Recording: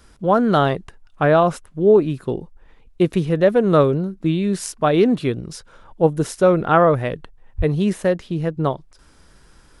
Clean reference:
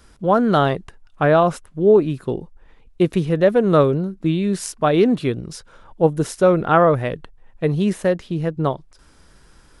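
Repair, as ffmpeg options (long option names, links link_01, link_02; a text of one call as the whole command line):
ffmpeg -i in.wav -filter_complex "[0:a]asplit=3[link_01][link_02][link_03];[link_01]afade=type=out:start_time=7.57:duration=0.02[link_04];[link_02]highpass=frequency=140:width=0.5412,highpass=frequency=140:width=1.3066,afade=type=in:start_time=7.57:duration=0.02,afade=type=out:start_time=7.69:duration=0.02[link_05];[link_03]afade=type=in:start_time=7.69:duration=0.02[link_06];[link_04][link_05][link_06]amix=inputs=3:normalize=0" out.wav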